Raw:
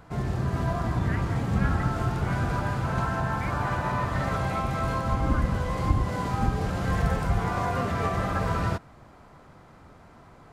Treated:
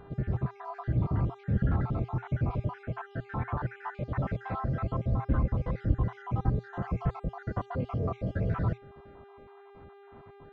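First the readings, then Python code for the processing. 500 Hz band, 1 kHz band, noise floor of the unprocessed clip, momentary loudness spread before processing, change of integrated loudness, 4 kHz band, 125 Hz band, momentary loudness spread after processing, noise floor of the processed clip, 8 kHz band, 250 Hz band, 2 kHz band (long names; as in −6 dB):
−6.5 dB, −10.0 dB, −52 dBFS, 2 LU, −5.0 dB, below −15 dB, −3.0 dB, 9 LU, −53 dBFS, below −30 dB, −5.0 dB, −11.5 dB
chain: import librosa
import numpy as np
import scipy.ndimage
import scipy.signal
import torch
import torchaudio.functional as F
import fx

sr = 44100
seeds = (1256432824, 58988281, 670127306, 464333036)

p1 = fx.spec_dropout(x, sr, seeds[0], share_pct=57)
p2 = fx.dynamic_eq(p1, sr, hz=120.0, q=4.7, threshold_db=-44.0, ratio=4.0, max_db=5)
p3 = fx.dmg_buzz(p2, sr, base_hz=400.0, harmonics=10, level_db=-51.0, tilt_db=-6, odd_only=False)
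p4 = 10.0 ** (-24.0 / 20.0) * np.tanh(p3 / 10.0 ** (-24.0 / 20.0))
p5 = p3 + F.gain(torch.from_numpy(p4), -5.0).numpy()
p6 = fx.spacing_loss(p5, sr, db_at_10k=39)
y = F.gain(torch.from_numpy(p6), -4.0).numpy()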